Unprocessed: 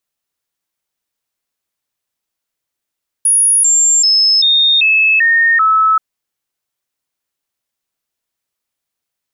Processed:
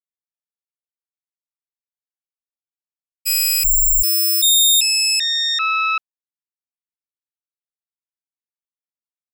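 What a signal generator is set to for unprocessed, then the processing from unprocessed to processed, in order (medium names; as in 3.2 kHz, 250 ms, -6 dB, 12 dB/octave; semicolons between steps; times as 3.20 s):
stepped sine 10.4 kHz down, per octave 2, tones 7, 0.39 s, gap 0.00 s -7.5 dBFS
self-modulated delay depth 0.14 ms; expander -7 dBFS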